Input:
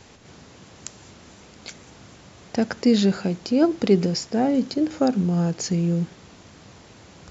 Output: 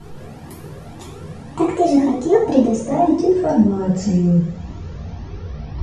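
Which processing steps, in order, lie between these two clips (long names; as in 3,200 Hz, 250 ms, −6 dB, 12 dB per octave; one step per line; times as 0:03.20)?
gliding playback speed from 175% → 76%
spectral tilt −3.5 dB per octave
in parallel at +1 dB: downward compressor, threshold −25 dBFS, peak gain reduction 17 dB
on the sum: coupled-rooms reverb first 0.49 s, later 1.7 s, DRR −6.5 dB
flanger whose copies keep moving one way rising 1.9 Hz
level −2.5 dB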